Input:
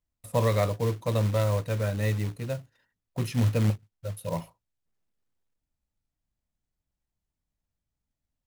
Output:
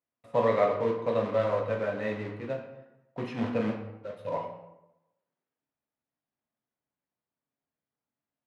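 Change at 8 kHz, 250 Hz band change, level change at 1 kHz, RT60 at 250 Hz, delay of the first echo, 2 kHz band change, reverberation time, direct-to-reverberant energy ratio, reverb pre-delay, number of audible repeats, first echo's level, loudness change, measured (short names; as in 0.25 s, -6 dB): under -20 dB, -1.5 dB, +3.0 dB, 0.95 s, none, 0.0 dB, 0.90 s, 1.0 dB, 7 ms, none, none, -2.0 dB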